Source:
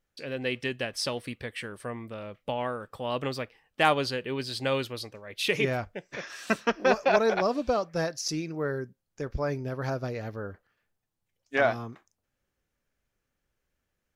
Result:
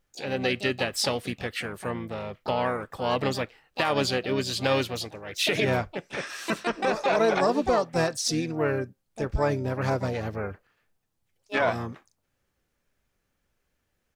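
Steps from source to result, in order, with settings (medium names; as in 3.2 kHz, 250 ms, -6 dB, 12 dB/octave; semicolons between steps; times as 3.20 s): harmony voices -5 st -11 dB, +7 st -9 dB; peak limiter -17.5 dBFS, peak gain reduction 11.5 dB; trim +4 dB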